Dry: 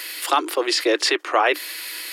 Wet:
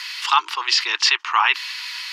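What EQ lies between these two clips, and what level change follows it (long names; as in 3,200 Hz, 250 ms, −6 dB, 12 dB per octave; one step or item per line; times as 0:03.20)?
dynamic equaliser 2,800 Hz, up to +6 dB, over −40 dBFS, Q 4.1
drawn EQ curve 140 Hz 0 dB, 270 Hz −20 dB, 420 Hz −13 dB, 600 Hz −26 dB, 910 Hz +14 dB, 1,600 Hz +8 dB, 3,200 Hz +10 dB, 5,900 Hz +12 dB, 9,500 Hz −8 dB, 14,000 Hz −11 dB
−7.5 dB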